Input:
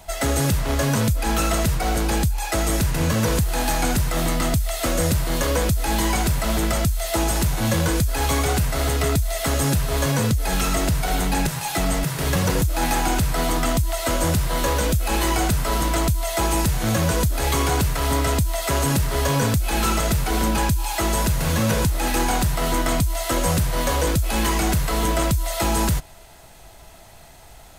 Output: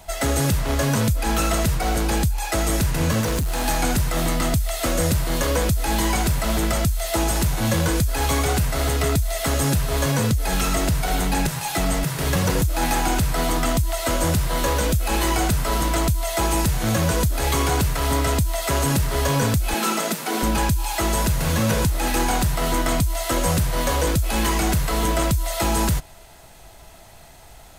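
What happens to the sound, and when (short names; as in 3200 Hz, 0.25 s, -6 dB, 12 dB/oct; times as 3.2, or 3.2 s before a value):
3.21–3.64 hard clip -19.5 dBFS
19.74–20.43 steep high-pass 180 Hz 48 dB/oct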